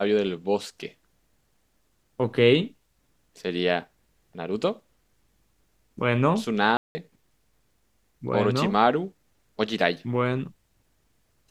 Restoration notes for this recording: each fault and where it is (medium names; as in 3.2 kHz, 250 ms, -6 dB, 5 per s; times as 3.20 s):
6.77–6.95 s: dropout 180 ms